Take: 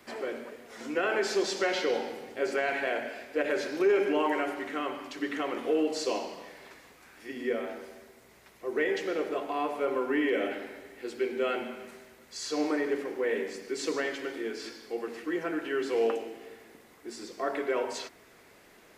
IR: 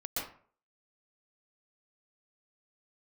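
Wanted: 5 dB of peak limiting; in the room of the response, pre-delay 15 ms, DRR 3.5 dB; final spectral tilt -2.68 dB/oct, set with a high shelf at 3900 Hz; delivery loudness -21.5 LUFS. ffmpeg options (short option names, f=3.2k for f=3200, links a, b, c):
-filter_complex "[0:a]highshelf=f=3.9k:g=3,alimiter=limit=-21dB:level=0:latency=1,asplit=2[a][b];[1:a]atrim=start_sample=2205,adelay=15[c];[b][c]afir=irnorm=-1:irlink=0,volume=-7dB[d];[a][d]amix=inputs=2:normalize=0,volume=9.5dB"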